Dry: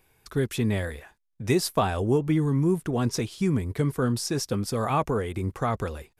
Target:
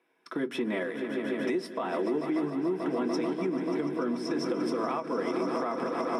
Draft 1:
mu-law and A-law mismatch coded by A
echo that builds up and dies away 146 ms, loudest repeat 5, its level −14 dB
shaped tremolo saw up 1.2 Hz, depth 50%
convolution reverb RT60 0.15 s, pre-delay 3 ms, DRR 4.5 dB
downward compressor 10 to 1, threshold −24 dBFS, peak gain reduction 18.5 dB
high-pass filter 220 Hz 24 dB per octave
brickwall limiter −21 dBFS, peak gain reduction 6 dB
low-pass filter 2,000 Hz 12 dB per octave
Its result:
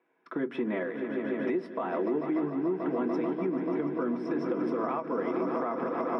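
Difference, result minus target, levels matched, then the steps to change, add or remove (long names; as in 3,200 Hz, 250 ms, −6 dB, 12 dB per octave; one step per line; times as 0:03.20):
8,000 Hz band −19.5 dB
change: low-pass filter 7,800 Hz 12 dB per octave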